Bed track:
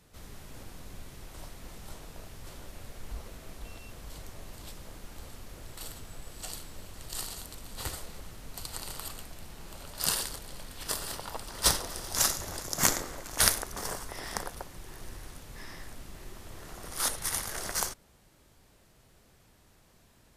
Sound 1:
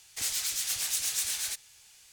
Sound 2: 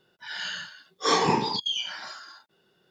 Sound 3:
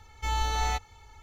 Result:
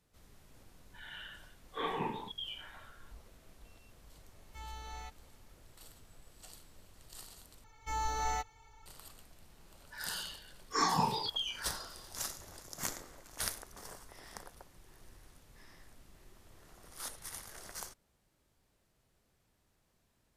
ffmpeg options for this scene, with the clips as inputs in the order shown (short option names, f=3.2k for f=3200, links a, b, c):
-filter_complex "[2:a]asplit=2[a][b];[3:a]asplit=2[c][d];[0:a]volume=-13.5dB[e];[a]aresample=8000,aresample=44100[f];[d]aecho=1:1:6.7:0.7[g];[b]asplit=2[h][i];[i]afreqshift=-1.2[j];[h][j]amix=inputs=2:normalize=1[k];[e]asplit=2[l][m];[l]atrim=end=7.644[n];[g]atrim=end=1.22,asetpts=PTS-STARTPTS,volume=-8dB[o];[m]atrim=start=8.856[p];[f]atrim=end=2.9,asetpts=PTS-STARTPTS,volume=-13.5dB,afade=t=in:d=0.004:c=hsin,afade=t=out:st=2.896:d=0.004:c=hsin,adelay=720[q];[c]atrim=end=1.22,asetpts=PTS-STARTPTS,volume=-18dB,afade=t=in:d=0.004:c=hsin,afade=t=out:st=1.216:d=0.004:c=hsin,adelay=4320[r];[k]atrim=end=2.9,asetpts=PTS-STARTPTS,volume=-5.5dB,afade=t=in:d=0.004:c=hsin,afade=t=out:st=2.896:d=0.004:c=hsin,adelay=427770S[s];[n][o]acrossfade=d=0.004:c1=hsin:c2=hsin[t];[t][p]acrossfade=d=0.004:c1=hsin:c2=hsin[u];[u][q][r][s]amix=inputs=4:normalize=0"